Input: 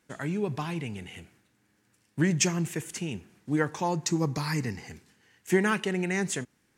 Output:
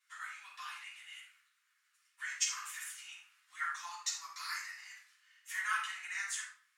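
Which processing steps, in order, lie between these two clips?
elliptic high-pass 1200 Hz, stop band 60 dB; dynamic EQ 2700 Hz, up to -5 dB, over -49 dBFS, Q 1.7; 2.43–2.98 negative-ratio compressor -44 dBFS, ratio -0.5; flange 1.3 Hz, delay 5.5 ms, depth 9.3 ms, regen +35%; reverb RT60 0.55 s, pre-delay 3 ms, DRR -9 dB; gain -9 dB

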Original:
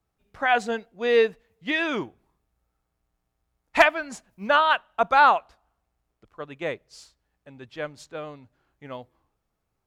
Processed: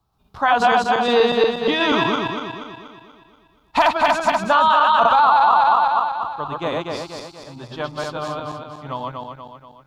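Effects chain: regenerating reverse delay 0.12 s, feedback 69%, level -0.5 dB; graphic EQ 125/500/1000/2000/4000/8000 Hz +4/-6/+11/-12/+7/-5 dB; limiter -12.5 dBFS, peak gain reduction 15 dB; gain +6 dB

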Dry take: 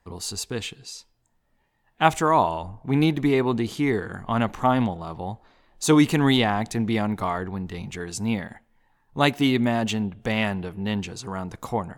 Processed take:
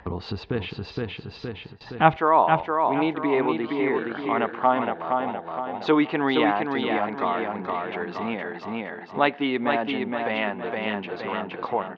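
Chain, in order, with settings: HPF 50 Hz 12 dB/oct, from 2.16 s 390 Hz; feedback echo 0.467 s, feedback 34%, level -4.5 dB; gate with hold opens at -40 dBFS; Bessel low-pass 2100 Hz, order 8; upward compressor, threshold -24 dBFS; gain +2 dB

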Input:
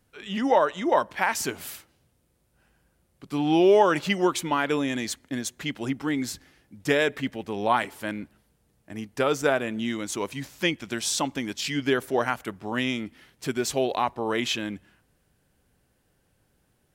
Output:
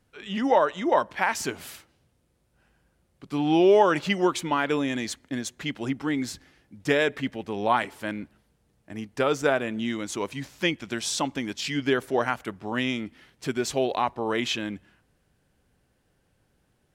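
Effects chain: high shelf 11000 Hz -11 dB

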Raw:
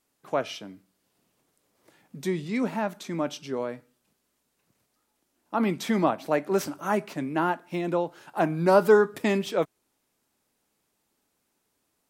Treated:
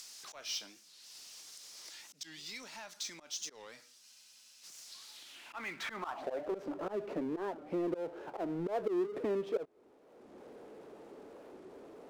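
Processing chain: upward compressor, threshold -45 dBFS; auto swell 0.307 s; compressor 4:1, threshold -37 dBFS, peak gain reduction 14 dB; band-pass sweep 5300 Hz -> 450 Hz, 4.98–6.68; power-law curve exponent 0.7; spectral freeze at 4.03, 0.60 s; record warp 45 rpm, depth 250 cents; gain +6 dB

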